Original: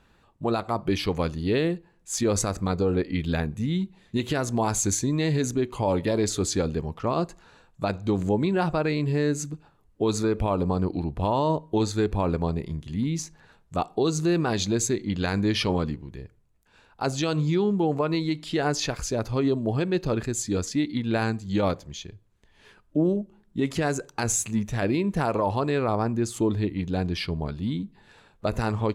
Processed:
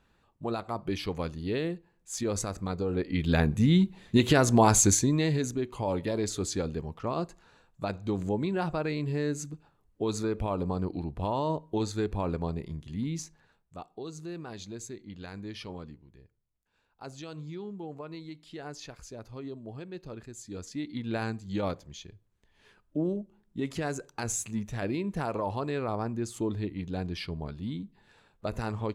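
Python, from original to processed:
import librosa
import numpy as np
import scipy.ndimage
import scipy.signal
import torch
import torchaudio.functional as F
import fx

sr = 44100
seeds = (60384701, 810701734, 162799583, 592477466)

y = fx.gain(x, sr, db=fx.line((2.88, -7.0), (3.51, 4.5), (4.76, 4.5), (5.53, -6.0), (13.23, -6.0), (13.78, -16.5), (20.37, -16.5), (21.04, -7.0)))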